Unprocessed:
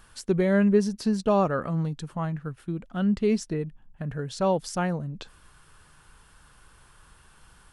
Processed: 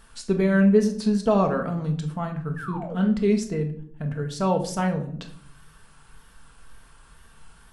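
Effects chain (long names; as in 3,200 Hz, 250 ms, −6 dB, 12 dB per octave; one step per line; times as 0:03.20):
tape wow and flutter 69 cents
0:02.56–0:02.95: sound drawn into the spectrogram fall 430–1,800 Hz −38 dBFS
0:02.38–0:03.09: double-tracking delay 22 ms −8 dB
rectangular room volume 810 cubic metres, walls furnished, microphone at 1.6 metres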